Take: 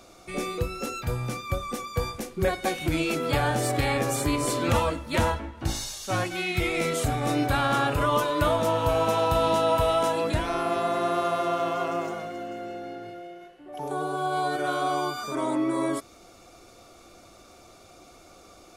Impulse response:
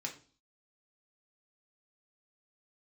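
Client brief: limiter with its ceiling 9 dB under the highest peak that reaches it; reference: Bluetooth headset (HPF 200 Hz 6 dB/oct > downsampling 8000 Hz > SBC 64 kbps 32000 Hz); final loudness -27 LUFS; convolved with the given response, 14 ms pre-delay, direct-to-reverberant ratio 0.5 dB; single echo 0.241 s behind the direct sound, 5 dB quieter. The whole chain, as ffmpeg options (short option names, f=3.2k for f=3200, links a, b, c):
-filter_complex "[0:a]alimiter=limit=-20.5dB:level=0:latency=1,aecho=1:1:241:0.562,asplit=2[a][b];[1:a]atrim=start_sample=2205,adelay=14[c];[b][c]afir=irnorm=-1:irlink=0,volume=-0.5dB[d];[a][d]amix=inputs=2:normalize=0,highpass=f=200:p=1,aresample=8000,aresample=44100,volume=0.5dB" -ar 32000 -c:a sbc -b:a 64k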